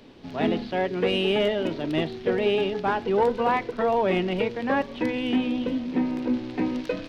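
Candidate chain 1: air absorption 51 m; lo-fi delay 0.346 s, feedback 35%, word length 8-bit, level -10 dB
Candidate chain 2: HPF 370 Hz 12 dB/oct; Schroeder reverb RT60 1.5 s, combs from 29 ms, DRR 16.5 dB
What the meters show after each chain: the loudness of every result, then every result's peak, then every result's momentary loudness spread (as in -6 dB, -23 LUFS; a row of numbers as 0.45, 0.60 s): -25.0, -27.5 LUFS; -11.5, -12.5 dBFS; 5, 9 LU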